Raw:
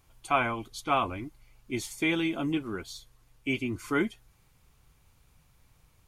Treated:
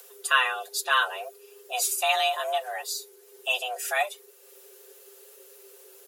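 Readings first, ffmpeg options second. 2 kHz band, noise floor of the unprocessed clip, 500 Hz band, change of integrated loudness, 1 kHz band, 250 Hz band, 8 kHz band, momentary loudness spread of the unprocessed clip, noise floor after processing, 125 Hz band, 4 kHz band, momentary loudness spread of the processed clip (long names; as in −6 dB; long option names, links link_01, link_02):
+7.5 dB, −64 dBFS, +2.0 dB, +4.5 dB, +4.5 dB, below −25 dB, +14.0 dB, 12 LU, −54 dBFS, below −40 dB, +10.5 dB, 12 LU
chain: -filter_complex "[0:a]aecho=1:1:6.1:0.82,acrossover=split=290[link_01][link_02];[link_01]asoftclip=type=tanh:threshold=-38dB[link_03];[link_03][link_02]amix=inputs=2:normalize=0,aemphasis=mode=production:type=75kf,acompressor=mode=upward:threshold=-44dB:ratio=2.5,afreqshift=380"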